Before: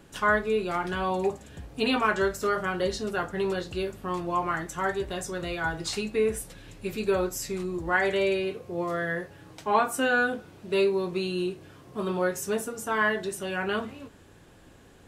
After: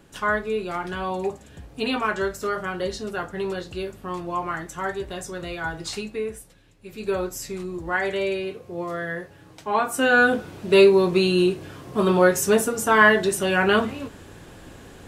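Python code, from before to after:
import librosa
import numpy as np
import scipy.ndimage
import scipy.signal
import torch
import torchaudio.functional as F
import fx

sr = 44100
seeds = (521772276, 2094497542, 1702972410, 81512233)

y = fx.gain(x, sr, db=fx.line((5.98, 0.0), (6.77, -12.5), (7.09, 0.0), (9.73, 0.0), (10.36, 10.0)))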